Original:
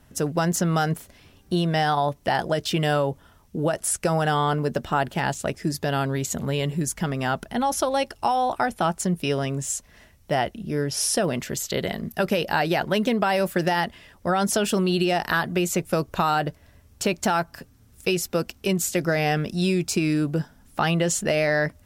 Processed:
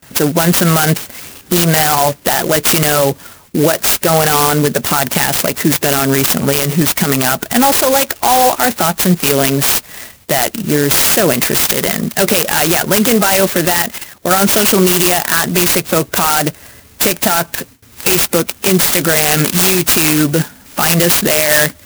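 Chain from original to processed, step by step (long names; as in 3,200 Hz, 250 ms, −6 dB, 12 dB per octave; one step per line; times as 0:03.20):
spectral magnitudes quantised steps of 15 dB
meter weighting curve D
noise gate with hold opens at −48 dBFS
0:13.65–0:14.31: output level in coarse steps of 10 dB
0:18.93–0:20.39: high-shelf EQ 3,100 Hz +8.5 dB
soft clipping −5.5 dBFS, distortion −25 dB
boost into a limiter +17.5 dB
converter with an unsteady clock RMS 0.088 ms
level −1 dB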